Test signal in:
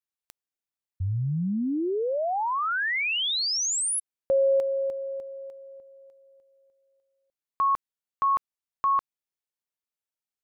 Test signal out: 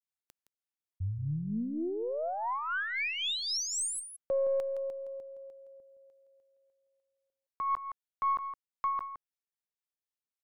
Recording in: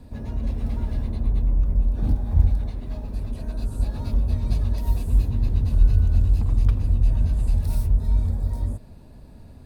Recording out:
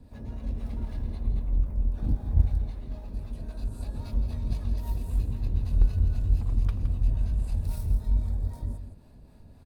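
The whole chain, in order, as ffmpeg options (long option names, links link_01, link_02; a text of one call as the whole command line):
ffmpeg -i in.wav -filter_complex "[0:a]acrossover=split=540[link_01][link_02];[link_01]aeval=exprs='val(0)*(1-0.5/2+0.5/2*cos(2*PI*3.8*n/s))':channel_layout=same[link_03];[link_02]aeval=exprs='val(0)*(1-0.5/2-0.5/2*cos(2*PI*3.8*n/s))':channel_layout=same[link_04];[link_03][link_04]amix=inputs=2:normalize=0,aeval=exprs='0.447*(cos(1*acos(clip(val(0)/0.447,-1,1)))-cos(1*PI/2))+0.0316*(cos(3*acos(clip(val(0)/0.447,-1,1)))-cos(3*PI/2))+0.0178*(cos(4*acos(clip(val(0)/0.447,-1,1)))-cos(4*PI/2))+0.00562*(cos(6*acos(clip(val(0)/0.447,-1,1)))-cos(6*PI/2))+0.00562*(cos(8*acos(clip(val(0)/0.447,-1,1)))-cos(8*PI/2))':channel_layout=same,aecho=1:1:166:0.316,volume=-3dB" out.wav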